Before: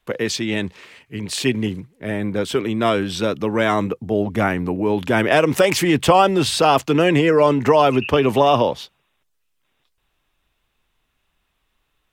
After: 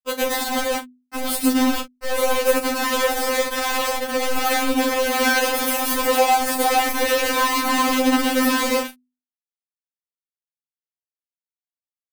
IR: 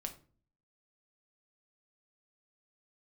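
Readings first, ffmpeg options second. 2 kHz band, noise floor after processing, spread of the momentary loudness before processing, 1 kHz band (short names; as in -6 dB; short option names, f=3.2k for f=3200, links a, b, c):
+2.0 dB, under -85 dBFS, 11 LU, -1.0 dB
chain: -filter_complex "[0:a]asplit=2[a][b];[b]equalizer=f=100:t=o:w=0.33:g=-11,equalizer=f=3.15k:t=o:w=0.33:g=6,equalizer=f=5k:t=o:w=0.33:g=8[c];[1:a]atrim=start_sample=2205,adelay=108[d];[c][d]afir=irnorm=-1:irlink=0,volume=6.5dB[e];[a][e]amix=inputs=2:normalize=0,acrossover=split=550|1900[f][g][h];[f]acompressor=threshold=-14dB:ratio=4[i];[g]acompressor=threshold=-19dB:ratio=4[j];[h]acompressor=threshold=-23dB:ratio=4[k];[i][j][k]amix=inputs=3:normalize=0,afwtdn=0.126,highshelf=f=4.8k:g=6.5,aexciter=amount=7.2:drive=8.8:freq=9.2k,acompressor=threshold=-26dB:ratio=2.5,acrusher=bits=3:mix=0:aa=0.000001,bandreject=f=50:t=h:w=6,bandreject=f=100:t=h:w=6,bandreject=f=150:t=h:w=6,bandreject=f=200:t=h:w=6,bandreject=f=250:t=h:w=6,asplit=2[l][m];[m]adelay=36,volume=-11dB[n];[l][n]amix=inputs=2:normalize=0,afftfilt=real='re*3.46*eq(mod(b,12),0)':imag='im*3.46*eq(mod(b,12),0)':win_size=2048:overlap=0.75,volume=6.5dB"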